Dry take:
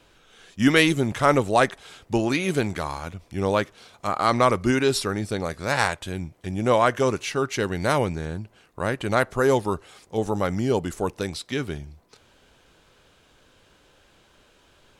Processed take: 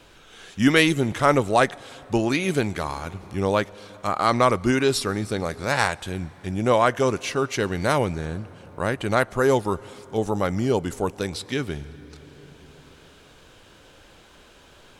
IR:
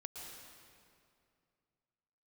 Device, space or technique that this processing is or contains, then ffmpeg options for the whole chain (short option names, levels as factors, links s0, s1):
ducked reverb: -filter_complex "[0:a]asplit=3[s0][s1][s2];[1:a]atrim=start_sample=2205[s3];[s1][s3]afir=irnorm=-1:irlink=0[s4];[s2]apad=whole_len=661209[s5];[s4][s5]sidechaincompress=threshold=0.0112:ratio=12:attack=16:release=1040,volume=1.88[s6];[s0][s6]amix=inputs=2:normalize=0"